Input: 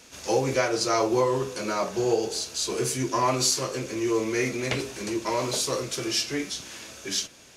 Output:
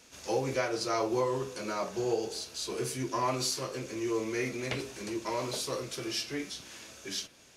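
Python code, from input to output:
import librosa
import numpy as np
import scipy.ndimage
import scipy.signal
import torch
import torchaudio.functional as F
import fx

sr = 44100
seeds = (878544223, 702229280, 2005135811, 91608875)

y = fx.dynamic_eq(x, sr, hz=7000.0, q=2.1, threshold_db=-42.0, ratio=4.0, max_db=-5)
y = y * librosa.db_to_amplitude(-6.5)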